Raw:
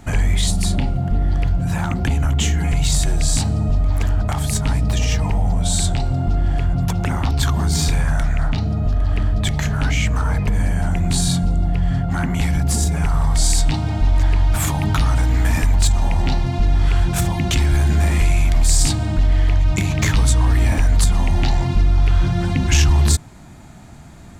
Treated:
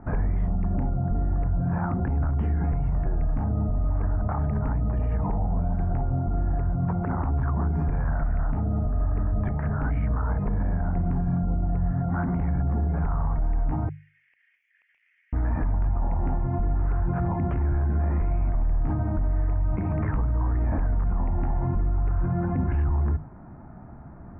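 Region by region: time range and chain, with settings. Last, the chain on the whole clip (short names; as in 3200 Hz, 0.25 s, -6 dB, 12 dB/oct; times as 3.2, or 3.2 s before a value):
13.89–15.33 minimum comb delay 0.31 ms + steep high-pass 1900 Hz 72 dB/oct + compressor, threshold -38 dBFS
whole clip: inverse Chebyshev low-pass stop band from 3600 Hz, stop band 50 dB; notches 50/100/150 Hz; limiter -16 dBFS; gain -2 dB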